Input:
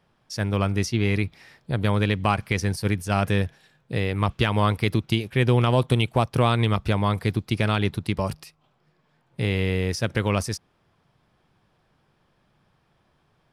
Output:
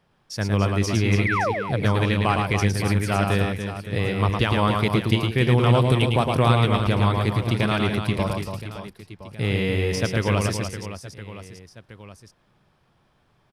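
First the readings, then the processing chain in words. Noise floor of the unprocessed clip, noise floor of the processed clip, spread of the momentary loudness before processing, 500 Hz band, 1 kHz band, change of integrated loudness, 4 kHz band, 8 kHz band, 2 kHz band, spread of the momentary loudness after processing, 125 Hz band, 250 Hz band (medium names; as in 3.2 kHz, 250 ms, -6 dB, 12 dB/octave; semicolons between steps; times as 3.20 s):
-67 dBFS, -64 dBFS, 9 LU, +2.5 dB, +2.5 dB, +2.0 dB, +2.0 dB, +2.0 dB, +3.0 dB, 15 LU, +2.5 dB, +2.0 dB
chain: painted sound fall, 1.25–1.52 s, 410–2400 Hz -24 dBFS; reverse bouncing-ball echo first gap 110 ms, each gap 1.6×, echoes 5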